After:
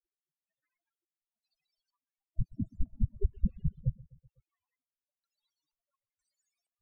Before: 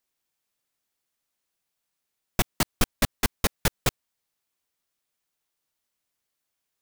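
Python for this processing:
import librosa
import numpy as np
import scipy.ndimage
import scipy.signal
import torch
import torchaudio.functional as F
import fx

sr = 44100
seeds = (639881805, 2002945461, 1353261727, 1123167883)

p1 = fx.halfwave_hold(x, sr, at=(2.9, 3.67))
p2 = fx.over_compress(p1, sr, threshold_db=-26.0, ratio=-1.0)
p3 = p1 + (p2 * librosa.db_to_amplitude(0.0))
p4 = 10.0 ** (-14.0 / 20.0) * np.tanh(p3 / 10.0 ** (-14.0 / 20.0))
p5 = fx.spec_erase(p4, sr, start_s=1.79, length_s=1.08, low_hz=320.0, high_hz=640.0)
p6 = fx.vibrato(p5, sr, rate_hz=0.5, depth_cents=32.0)
p7 = fx.spec_topn(p6, sr, count=4)
p8 = p7 + fx.echo_feedback(p7, sr, ms=126, feedback_pct=58, wet_db=-22.5, dry=0)
y = fx.filter_held_lowpass(p8, sr, hz=2.1, low_hz=260.0, high_hz=7400.0)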